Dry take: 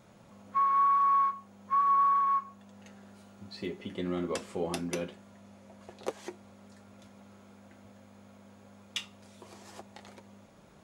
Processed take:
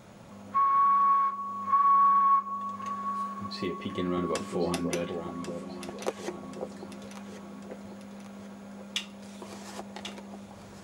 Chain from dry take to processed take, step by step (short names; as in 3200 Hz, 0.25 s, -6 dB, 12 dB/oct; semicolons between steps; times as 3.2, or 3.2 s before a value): in parallel at +2 dB: compressor, threshold -41 dBFS, peak gain reduction 16.5 dB; on the sum: echo with dull and thin repeats by turns 0.545 s, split 940 Hz, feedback 67%, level -6 dB